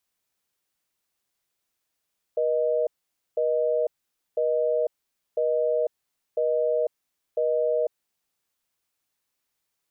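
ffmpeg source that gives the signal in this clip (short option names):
-f lavfi -i "aevalsrc='0.0668*(sin(2*PI*480*t)+sin(2*PI*620*t))*clip(min(mod(t,1),0.5-mod(t,1))/0.005,0,1)':d=5.92:s=44100"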